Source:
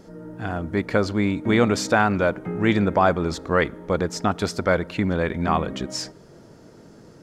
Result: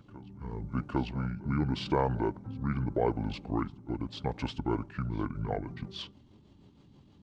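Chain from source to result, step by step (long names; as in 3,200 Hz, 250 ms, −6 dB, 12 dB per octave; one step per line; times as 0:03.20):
rotating-speaker cabinet horn 0.85 Hz, later 6.3 Hz, at 0:04.30
backwards echo 805 ms −20.5 dB
pitch shifter −8 semitones
level −8.5 dB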